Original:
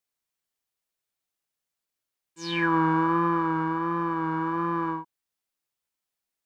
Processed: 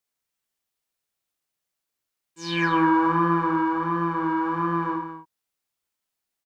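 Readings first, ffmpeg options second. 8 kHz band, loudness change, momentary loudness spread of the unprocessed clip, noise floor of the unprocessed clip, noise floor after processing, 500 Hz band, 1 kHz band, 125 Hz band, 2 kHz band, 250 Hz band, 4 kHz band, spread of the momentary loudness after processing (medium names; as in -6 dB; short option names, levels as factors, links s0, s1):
no reading, +2.5 dB, 9 LU, under -85 dBFS, -84 dBFS, +2.5 dB, +3.0 dB, +1.5 dB, +2.5 dB, +3.0 dB, +2.5 dB, 10 LU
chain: -af "aecho=1:1:46.65|207:0.562|0.355,volume=1.12"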